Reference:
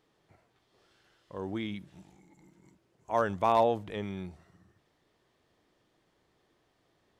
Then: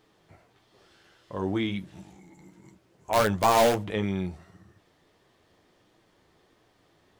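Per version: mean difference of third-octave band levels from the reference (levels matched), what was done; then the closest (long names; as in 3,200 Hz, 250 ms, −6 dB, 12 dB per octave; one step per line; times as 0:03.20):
3.5 dB: in parallel at −3.5 dB: wrap-around overflow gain 22.5 dB
on the sum: flanger 1.5 Hz, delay 8.7 ms, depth 3.6 ms, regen −38%
level +7 dB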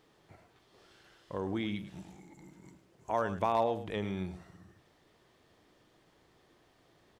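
5.0 dB: downward compressor 2 to 1, threshold −40 dBFS, peak gain reduction 11 dB
on a send: single-tap delay 105 ms −12.5 dB
on the sum: level +5.5 dB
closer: first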